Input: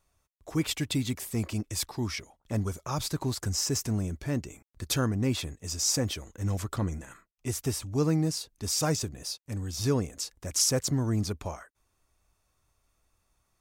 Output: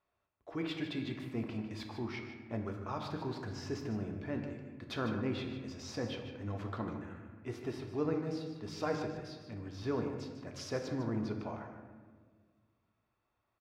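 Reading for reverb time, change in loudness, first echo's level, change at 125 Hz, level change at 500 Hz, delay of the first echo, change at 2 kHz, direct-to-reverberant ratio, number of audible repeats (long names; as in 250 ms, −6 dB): 1.6 s, −9.5 dB, −10.0 dB, −11.0 dB, −4.0 dB, 151 ms, −5.0 dB, 2.5 dB, 1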